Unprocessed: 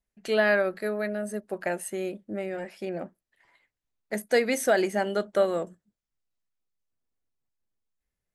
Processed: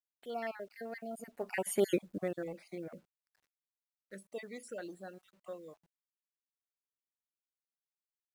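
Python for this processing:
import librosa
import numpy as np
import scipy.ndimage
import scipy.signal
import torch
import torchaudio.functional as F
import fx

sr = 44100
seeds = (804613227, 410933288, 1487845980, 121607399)

y = fx.spec_dropout(x, sr, seeds[0], share_pct=42)
y = fx.doppler_pass(y, sr, speed_mps=27, closest_m=2.9, pass_at_s=1.91)
y = fx.quant_companded(y, sr, bits=8)
y = y * librosa.db_to_amplitude(8.0)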